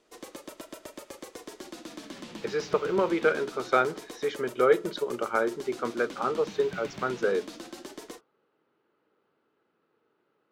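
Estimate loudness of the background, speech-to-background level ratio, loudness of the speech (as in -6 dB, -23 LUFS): -43.0 LUFS, 14.5 dB, -28.5 LUFS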